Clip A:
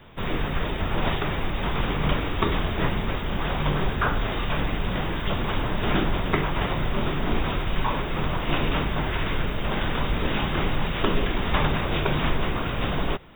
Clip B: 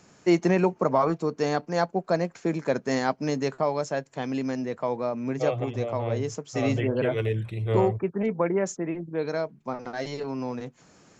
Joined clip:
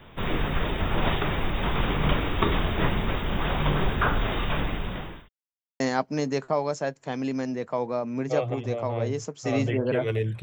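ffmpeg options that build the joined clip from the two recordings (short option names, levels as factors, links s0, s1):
-filter_complex "[0:a]apad=whole_dur=10.42,atrim=end=10.42,asplit=2[s0][s1];[s0]atrim=end=5.29,asetpts=PTS-STARTPTS,afade=t=out:st=4.19:d=1.1:c=qsin[s2];[s1]atrim=start=5.29:end=5.8,asetpts=PTS-STARTPTS,volume=0[s3];[1:a]atrim=start=2.9:end=7.52,asetpts=PTS-STARTPTS,afade=t=in:d=0.004:c=hsin[s4];[s2][s3][s4]concat=n=3:v=0:a=1"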